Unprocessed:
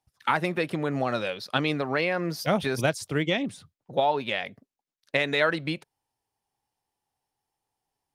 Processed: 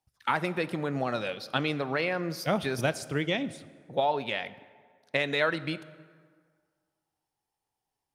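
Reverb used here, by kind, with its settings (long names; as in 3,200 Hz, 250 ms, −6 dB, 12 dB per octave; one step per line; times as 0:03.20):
dense smooth reverb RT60 1.8 s, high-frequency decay 0.6×, DRR 15 dB
level −3 dB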